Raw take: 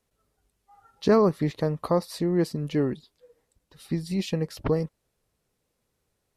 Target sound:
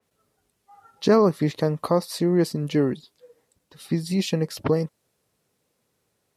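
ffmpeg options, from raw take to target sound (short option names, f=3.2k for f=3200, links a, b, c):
-filter_complex "[0:a]asplit=2[a][b];[b]alimiter=limit=-18.5dB:level=0:latency=1:release=407,volume=-3dB[c];[a][c]amix=inputs=2:normalize=0,highpass=110,adynamicequalizer=threshold=0.00794:dfrequency=3800:dqfactor=0.7:tfrequency=3800:tqfactor=0.7:attack=5:release=100:ratio=0.375:range=1.5:mode=boostabove:tftype=highshelf"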